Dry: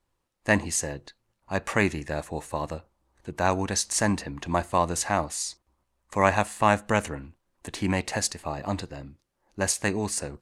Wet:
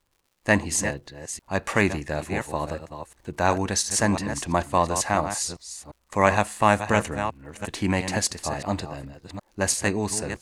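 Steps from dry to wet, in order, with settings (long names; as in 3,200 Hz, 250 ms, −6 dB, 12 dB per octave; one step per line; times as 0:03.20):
delay that plays each chunk backwards 348 ms, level −9 dB
surface crackle 140 per second −54 dBFS
level +2 dB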